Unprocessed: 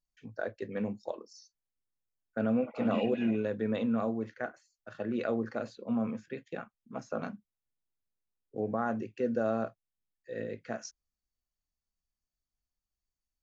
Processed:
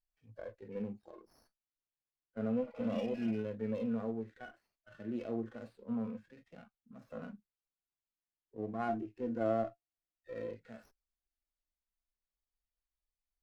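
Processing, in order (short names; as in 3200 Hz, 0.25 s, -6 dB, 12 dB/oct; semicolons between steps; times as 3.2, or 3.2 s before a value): 8.88–10.55 small resonant body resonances 320/690 Hz, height 12 dB, ringing for 90 ms; harmonic-percussive split percussive -18 dB; flange 0.3 Hz, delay 1.3 ms, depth 2.1 ms, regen +58%; running maximum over 5 samples; gain +1 dB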